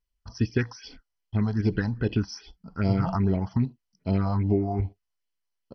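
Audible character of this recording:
phaser sweep stages 4, 2.5 Hz, lowest notch 360–1,500 Hz
MP2

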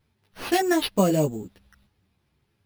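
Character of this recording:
aliases and images of a low sample rate 7,400 Hz, jitter 0%
a shimmering, thickened sound

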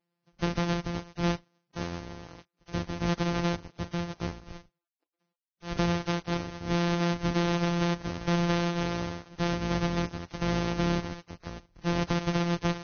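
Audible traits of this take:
a buzz of ramps at a fixed pitch in blocks of 256 samples
Ogg Vorbis

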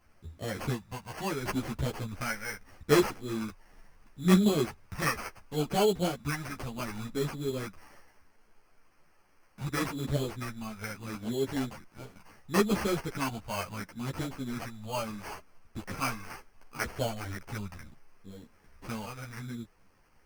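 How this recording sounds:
a quantiser's noise floor 12 bits, dither triangular
phaser sweep stages 2, 0.72 Hz, lowest notch 340–1,200 Hz
aliases and images of a low sample rate 3,700 Hz, jitter 0%
a shimmering, thickened sound

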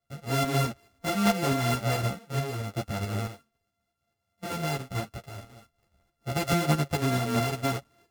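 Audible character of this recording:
a buzz of ramps at a fixed pitch in blocks of 64 samples
tremolo saw up 4.6 Hz, depth 50%
a shimmering, thickened sound

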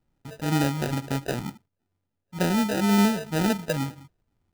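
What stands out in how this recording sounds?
phaser sweep stages 6, 2.1 Hz, lowest notch 270–1,300 Hz
aliases and images of a low sample rate 1,100 Hz, jitter 0%

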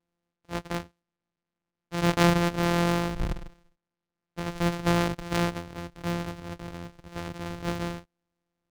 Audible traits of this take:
a buzz of ramps at a fixed pitch in blocks of 256 samples
IMA ADPCM

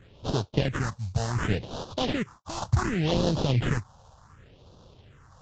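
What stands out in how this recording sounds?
aliases and images of a low sample rate 2,300 Hz, jitter 20%
phaser sweep stages 4, 0.68 Hz, lowest notch 330–2,000 Hz
Ogg Vorbis

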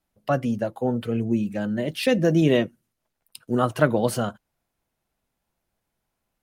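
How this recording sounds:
background noise floor −80 dBFS
spectral slope −6.0 dB per octave

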